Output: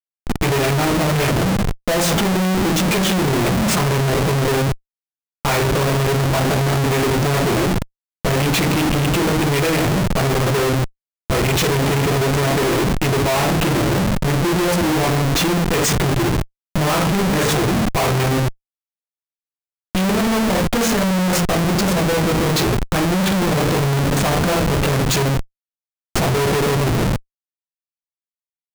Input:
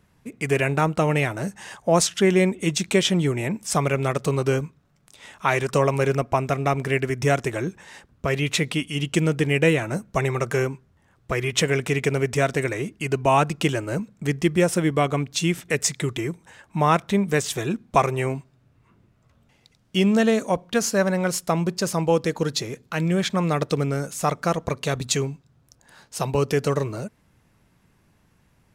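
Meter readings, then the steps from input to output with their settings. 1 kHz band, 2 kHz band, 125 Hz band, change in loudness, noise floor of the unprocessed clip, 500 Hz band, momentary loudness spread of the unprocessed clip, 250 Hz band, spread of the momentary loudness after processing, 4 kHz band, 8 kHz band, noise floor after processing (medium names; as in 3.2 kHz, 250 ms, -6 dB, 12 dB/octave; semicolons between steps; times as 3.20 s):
+5.0 dB, +5.0 dB, +7.0 dB, +5.5 dB, -62 dBFS, +3.5 dB, 9 LU, +6.0 dB, 4 LU, +7.0 dB, +5.0 dB, under -85 dBFS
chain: simulated room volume 43 m³, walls mixed, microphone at 0.85 m; Schmitt trigger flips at -24.5 dBFS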